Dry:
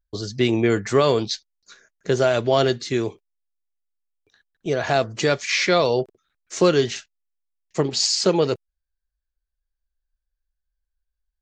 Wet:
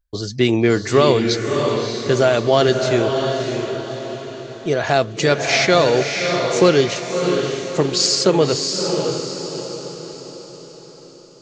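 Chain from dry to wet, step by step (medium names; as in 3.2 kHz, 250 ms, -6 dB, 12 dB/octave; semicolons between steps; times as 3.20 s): echo that smears into a reverb 625 ms, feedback 46%, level -4.5 dB; trim +3.5 dB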